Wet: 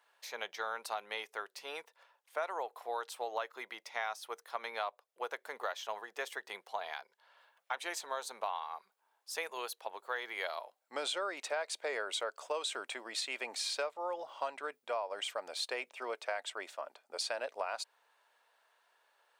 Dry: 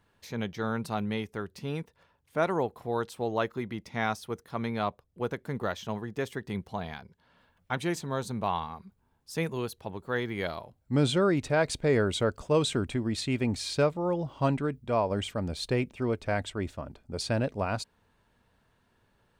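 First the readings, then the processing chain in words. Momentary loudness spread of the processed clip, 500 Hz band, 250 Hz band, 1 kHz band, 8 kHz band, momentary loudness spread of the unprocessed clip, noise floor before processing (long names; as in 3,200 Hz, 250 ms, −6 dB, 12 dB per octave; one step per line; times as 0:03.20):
8 LU, −10.5 dB, −26.0 dB, −5.0 dB, −2.0 dB, 11 LU, −70 dBFS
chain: high-pass filter 590 Hz 24 dB per octave
downward compressor 6 to 1, threshold −34 dBFS, peak gain reduction 11.5 dB
level +1 dB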